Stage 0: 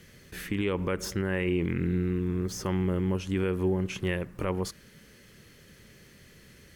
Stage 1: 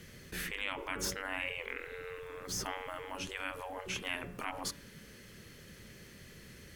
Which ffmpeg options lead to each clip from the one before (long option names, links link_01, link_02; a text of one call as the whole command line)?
ffmpeg -i in.wav -af "bandreject=frequency=141.4:width_type=h:width=4,bandreject=frequency=282.8:width_type=h:width=4,bandreject=frequency=424.2:width_type=h:width=4,bandreject=frequency=565.6:width_type=h:width=4,bandreject=frequency=707:width_type=h:width=4,bandreject=frequency=848.4:width_type=h:width=4,bandreject=frequency=989.8:width_type=h:width=4,bandreject=frequency=1131.2:width_type=h:width=4,bandreject=frequency=1272.6:width_type=h:width=4,bandreject=frequency=1414:width_type=h:width=4,bandreject=frequency=1555.4:width_type=h:width=4,bandreject=frequency=1696.8:width_type=h:width=4,bandreject=frequency=1838.2:width_type=h:width=4,bandreject=frequency=1979.6:width_type=h:width=4,bandreject=frequency=2121:width_type=h:width=4,bandreject=frequency=2262.4:width_type=h:width=4,bandreject=frequency=2403.8:width_type=h:width=4,bandreject=frequency=2545.2:width_type=h:width=4,bandreject=frequency=2686.6:width_type=h:width=4,bandreject=frequency=2828:width_type=h:width=4,bandreject=frequency=2969.4:width_type=h:width=4,bandreject=frequency=3110.8:width_type=h:width=4,bandreject=frequency=3252.2:width_type=h:width=4,bandreject=frequency=3393.6:width_type=h:width=4,bandreject=frequency=3535:width_type=h:width=4,afftfilt=real='re*lt(hypot(re,im),0.0708)':imag='im*lt(hypot(re,im),0.0708)':win_size=1024:overlap=0.75,volume=1dB" out.wav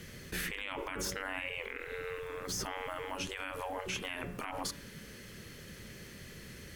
ffmpeg -i in.wav -af "alimiter=level_in=6.5dB:limit=-24dB:level=0:latency=1:release=65,volume=-6.5dB,volume=4dB" out.wav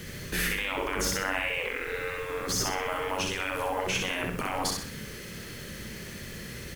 ffmpeg -i in.wav -af "acrusher=bits=9:mix=0:aa=0.000001,aecho=1:1:63|126|189|252|315:0.668|0.261|0.102|0.0396|0.0155,volume=7dB" out.wav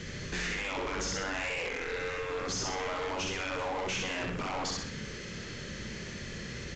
ffmpeg -i in.wav -af "volume=31dB,asoftclip=hard,volume=-31dB,aresample=16000,aresample=44100" out.wav